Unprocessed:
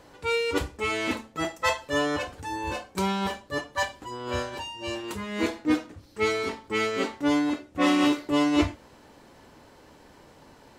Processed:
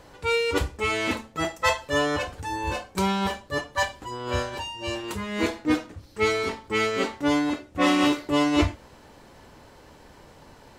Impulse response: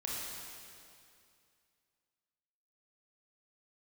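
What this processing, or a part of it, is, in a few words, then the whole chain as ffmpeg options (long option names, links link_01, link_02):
low shelf boost with a cut just above: -af "lowshelf=frequency=90:gain=6,equalizer=frequency=280:width_type=o:width=0.74:gain=-3,volume=2.5dB"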